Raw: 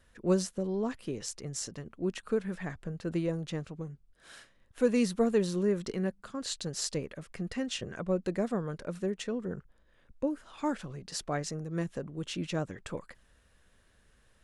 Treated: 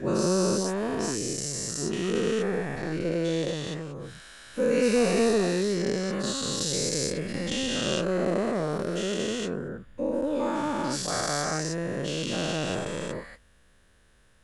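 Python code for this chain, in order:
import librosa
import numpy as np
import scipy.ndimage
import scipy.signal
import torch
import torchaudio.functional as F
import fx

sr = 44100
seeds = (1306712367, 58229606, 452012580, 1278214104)

y = fx.spec_dilate(x, sr, span_ms=480)
y = F.gain(torch.from_numpy(y), -2.0).numpy()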